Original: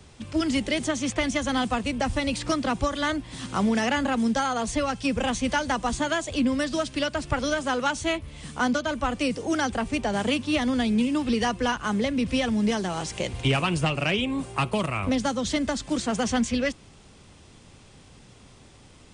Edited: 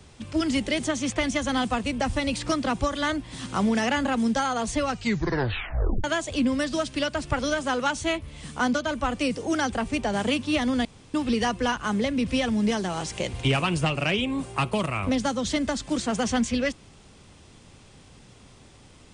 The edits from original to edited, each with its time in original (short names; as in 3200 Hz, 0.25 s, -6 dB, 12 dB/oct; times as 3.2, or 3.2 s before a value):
4.88 tape stop 1.16 s
10.85–11.14 room tone